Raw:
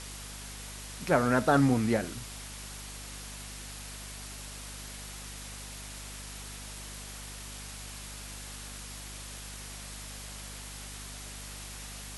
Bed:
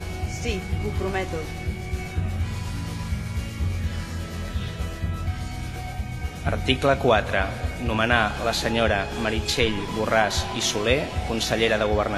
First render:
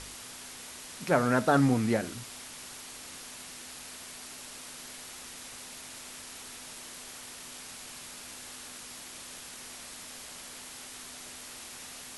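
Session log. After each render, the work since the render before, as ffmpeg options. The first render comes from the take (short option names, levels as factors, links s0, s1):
-af "bandreject=f=50:t=h:w=4,bandreject=f=100:t=h:w=4,bandreject=f=150:t=h:w=4,bandreject=f=200:t=h:w=4"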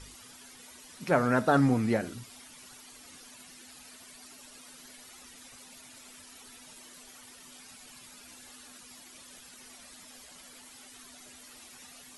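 -af "afftdn=nr=12:nf=-46"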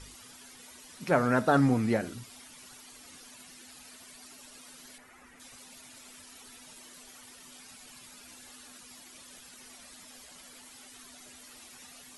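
-filter_complex "[0:a]asettb=1/sr,asplit=3[s0][s1][s2];[s0]atrim=end=4.984[s3];[s1]atrim=start=4.98:end=5.4,asetpts=PTS-STARTPTS,afade=t=in:d=0.004:c=qsin,afade=t=out:st=0.416:d=0.004:c=qsin,highshelf=f=2700:t=q:w=1.5:g=-10.5[s4];[s2]atrim=start=5.396[s5];[s3][s4]acrossfade=d=0.004:c1=hsin:c2=qsin[s6];[s6][s5]acrossfade=d=0.004:c1=qsin:c2=hsin"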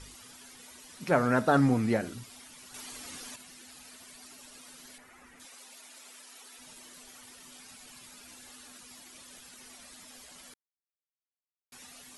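-filter_complex "[0:a]asettb=1/sr,asplit=3[s0][s1][s2];[s0]atrim=end=2.744[s3];[s1]atrim=start=2.74:end=3.36,asetpts=PTS-STARTPTS,afade=t=in:d=0.004:c=qsin,afade=t=out:st=0.616:d=0.004:c=qsin,acontrast=80[s4];[s2]atrim=start=3.356[s5];[s3][s4]acrossfade=d=0.004:c1=hsin:c2=qsin[s6];[s6][s5]acrossfade=d=0.004:c1=qsin:c2=hsin,asettb=1/sr,asplit=3[s7][s8][s9];[s7]atrim=end=5.454[s10];[s8]atrim=start=5.45:end=6.59,asetpts=PTS-STARTPTS,afade=t=in:d=0.004:c=qsin,afade=t=out:st=1.136:d=0.004:c=qsin,highpass=370[s11];[s9]atrim=start=6.586[s12];[s10][s11]acrossfade=d=0.004:c1=hsin:c2=qsin[s13];[s13][s12]acrossfade=d=0.004:c1=qsin:c2=hsin,asplit=3[s14][s15][s16];[s14]atrim=end=10.54,asetpts=PTS-STARTPTS,afade=t=out:st=10.536:d=0.004:c=hsin[s17];[s15]atrim=start=10.54:end=11.72,asetpts=PTS-STARTPTS,volume=0[s18];[s16]atrim=start=11.72,asetpts=PTS-STARTPTS,afade=t=in:d=0.004:c=hsin[s19];[s17][s18][s19]concat=n=3:v=0:a=1"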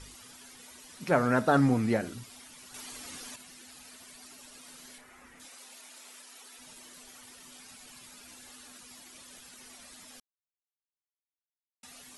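-filter_complex "[0:a]asettb=1/sr,asplit=3[s0][s1][s2];[s0]atrim=end=4.614[s3];[s1]atrim=start=4.61:end=6.22,asetpts=PTS-STARTPTS,afade=t=in:d=0.004:c=qsin,afade=t=out:st=1.606:d=0.004:c=qsin,asplit=2[s4][s5];[s5]adelay=31,volume=0.398[s6];[s4][s6]amix=inputs=2:normalize=0,atrim=end_sample=71001[s7];[s2]atrim=start=6.216[s8];[s3][s7]acrossfade=d=0.004:c1=hsin:c2=qsin[s9];[s9][s8]acrossfade=d=0.004:c1=qsin:c2=hsin,asplit=3[s10][s11][s12];[s10]atrim=end=10.2,asetpts=PTS-STARTPTS,afade=t=out:st=10.196:d=0.004:c=hsin[s13];[s11]atrim=start=10.2:end=11.83,asetpts=PTS-STARTPTS,volume=0[s14];[s12]atrim=start=11.83,asetpts=PTS-STARTPTS,afade=t=in:d=0.004:c=hsin[s15];[s13][s14][s15]concat=n=3:v=0:a=1"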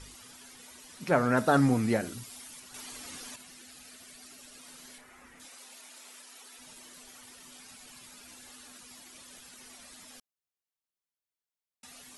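-filter_complex "[0:a]asettb=1/sr,asplit=3[s0][s1][s2];[s0]atrim=end=1.374[s3];[s1]atrim=start=1.37:end=2.6,asetpts=PTS-STARTPTS,afade=t=in:d=0.004:c=qsin,afade=t=out:st=1.226:d=0.004:c=qsin,highshelf=f=6200:g=7.5[s4];[s2]atrim=start=2.596[s5];[s3][s4]acrossfade=d=0.004:c1=hsin:c2=qsin[s6];[s6][s5]acrossfade=d=0.004:c1=qsin:c2=hsin,asettb=1/sr,asplit=3[s7][s8][s9];[s7]atrim=end=3.624[s10];[s8]atrim=start=3.62:end=4.59,asetpts=PTS-STARTPTS,afade=t=in:d=0.004:c=qsin,afade=t=out:st=0.966:d=0.004:c=qsin,equalizer=f=950:t=o:w=0.33:g=-7[s11];[s9]atrim=start=4.586[s12];[s10][s11]acrossfade=d=0.004:c1=hsin:c2=qsin[s13];[s13][s12]acrossfade=d=0.004:c1=qsin:c2=hsin"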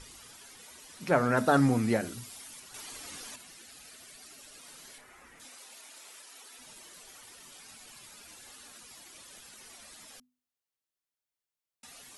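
-af "bandreject=f=50:t=h:w=6,bandreject=f=100:t=h:w=6,bandreject=f=150:t=h:w=6,bandreject=f=200:t=h:w=6,bandreject=f=250:t=h:w=6"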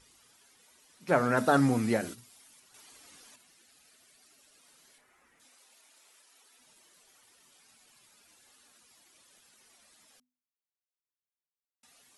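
-af "agate=range=0.282:threshold=0.0112:ratio=16:detection=peak,lowshelf=f=70:g=-8.5"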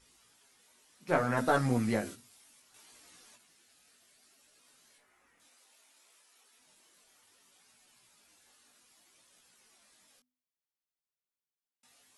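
-af "flanger=delay=16:depth=5.3:speed=0.64,aeval=exprs='0.266*(cos(1*acos(clip(val(0)/0.266,-1,1)))-cos(1*PI/2))+0.00944*(cos(6*acos(clip(val(0)/0.266,-1,1)))-cos(6*PI/2))':c=same"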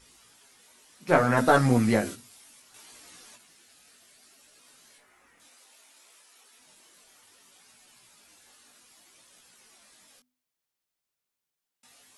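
-af "volume=2.37"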